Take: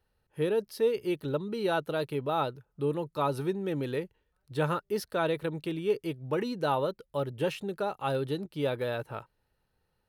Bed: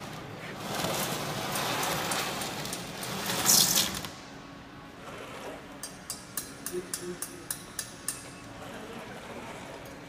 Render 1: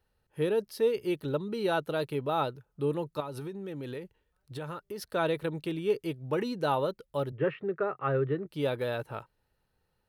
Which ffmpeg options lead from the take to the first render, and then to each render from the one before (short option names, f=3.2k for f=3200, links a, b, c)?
-filter_complex "[0:a]asettb=1/sr,asplit=3[a][b][c];[a]atrim=end=3.204[d];[b]atrim=start=3.2:end=5.02,asetpts=PTS-STARTPTS,afade=t=in:d=0.004:c=qsin,afade=t=out:st=1.816:d=0.004:c=qsin,acompressor=threshold=-35dB:ratio=6:attack=3.2:release=140:knee=1:detection=peak[e];[c]atrim=start=5.016[f];[d][e]acrossfade=d=0.004:c1=hsin:c2=qsin[g];[g][f]acrossfade=d=0.004:c1=qsin:c2=hsin,asettb=1/sr,asplit=3[h][i][j];[h]atrim=end=7.324[k];[i]atrim=start=7.32:end=8.47,asetpts=PTS-STARTPTS,afade=t=in:d=0.004:c=qsin,afade=t=out:st=1.146:d=0.004:c=qsin,highpass=120,equalizer=f=130:t=q:w=4:g=7,equalizer=f=220:t=q:w=4:g=-6,equalizer=f=400:t=q:w=4:g=5,equalizer=f=870:t=q:w=4:g=-9,equalizer=f=1.2k:t=q:w=4:g=7,equalizer=f=1.9k:t=q:w=4:g=7,lowpass=f=2.2k:w=0.5412,lowpass=f=2.2k:w=1.3066[l];[j]atrim=start=8.466[m];[k][l]acrossfade=d=0.004:c1=hsin:c2=qsin[n];[n][m]acrossfade=d=0.004:c1=qsin:c2=hsin"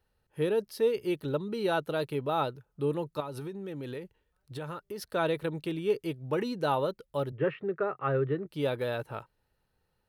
-af anull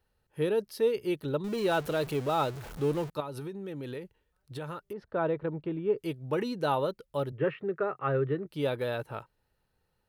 -filter_complex "[0:a]asettb=1/sr,asplit=3[a][b][c];[a]atrim=end=1.444[d];[b]atrim=start=1.44:end=3.1,asetpts=PTS-STARTPTS,afade=t=in:d=0.004:c=qsin,afade=t=out:st=1.656:d=0.004:c=qsin,aeval=exprs='val(0)+0.5*0.0133*sgn(val(0))':c=same[e];[c]atrim=start=3.096[f];[d][e]acrossfade=d=0.004:c1=hsin:c2=qsin[g];[g][f]acrossfade=d=0.004:c1=qsin:c2=hsin,asettb=1/sr,asplit=3[h][i][j];[h]atrim=end=4.934[k];[i]atrim=start=4.93:end=5.98,asetpts=PTS-STARTPTS,afade=t=in:d=0.004:c=qsin,afade=t=out:st=1.046:d=0.004:c=qsin,lowpass=1.4k[l];[j]atrim=start=5.976[m];[k][l]acrossfade=d=0.004:c1=hsin:c2=qsin[n];[n][m]acrossfade=d=0.004:c1=qsin:c2=hsin"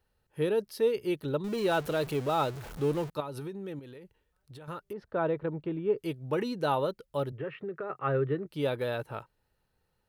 -filter_complex "[0:a]asettb=1/sr,asplit=3[a][b][c];[a]atrim=end=3.794[d];[b]atrim=start=3.79:end=4.68,asetpts=PTS-STARTPTS,afade=t=in:d=0.004:c=qsin,afade=t=out:st=0.886:d=0.004:c=qsin,acompressor=threshold=-46dB:ratio=4:attack=3.2:release=140:knee=1:detection=peak[e];[c]atrim=start=4.676[f];[d][e]acrossfade=d=0.004:c1=hsin:c2=qsin[g];[g][f]acrossfade=d=0.004:c1=qsin:c2=hsin,asettb=1/sr,asplit=3[h][i][j];[h]atrim=end=7.364[k];[i]atrim=start=7.36:end=7.9,asetpts=PTS-STARTPTS,afade=t=in:d=0.004:c=qsin,afade=t=out:st=0.536:d=0.004:c=qsin,acompressor=threshold=-34dB:ratio=3:attack=3.2:release=140:knee=1:detection=peak[l];[j]atrim=start=7.896[m];[k][l]acrossfade=d=0.004:c1=hsin:c2=qsin[n];[n][m]acrossfade=d=0.004:c1=qsin:c2=hsin"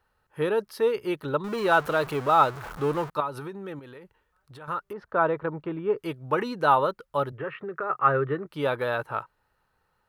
-af "equalizer=f=1.2k:w=0.94:g=13"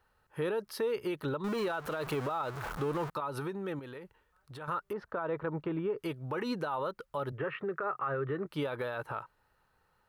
-af "acompressor=threshold=-23dB:ratio=6,alimiter=level_in=1.5dB:limit=-24dB:level=0:latency=1:release=78,volume=-1.5dB"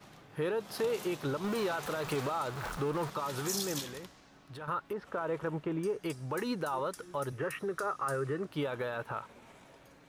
-filter_complex "[1:a]volume=-14.5dB[a];[0:a][a]amix=inputs=2:normalize=0"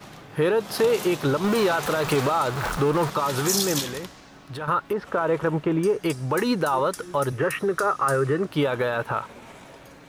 -af "volume=11.5dB"